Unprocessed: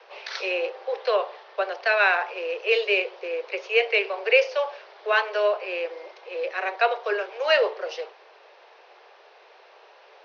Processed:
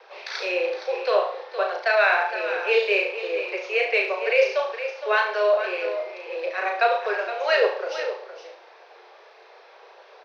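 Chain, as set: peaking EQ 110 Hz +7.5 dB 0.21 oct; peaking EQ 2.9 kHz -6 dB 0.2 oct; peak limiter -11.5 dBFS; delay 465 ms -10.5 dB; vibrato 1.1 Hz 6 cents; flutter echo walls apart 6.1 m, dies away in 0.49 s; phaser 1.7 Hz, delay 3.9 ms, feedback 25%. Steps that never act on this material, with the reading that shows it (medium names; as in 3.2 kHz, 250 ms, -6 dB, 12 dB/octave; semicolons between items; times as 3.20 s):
peaking EQ 110 Hz: input has nothing below 320 Hz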